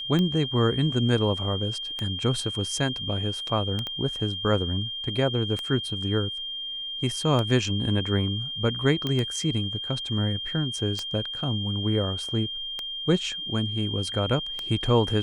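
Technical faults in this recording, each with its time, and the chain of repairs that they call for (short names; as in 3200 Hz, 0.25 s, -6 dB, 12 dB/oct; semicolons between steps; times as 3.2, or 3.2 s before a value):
tick 33 1/3 rpm -15 dBFS
tone 3200 Hz -31 dBFS
3.87 pop -19 dBFS
9.07 pop -15 dBFS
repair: de-click; notch 3200 Hz, Q 30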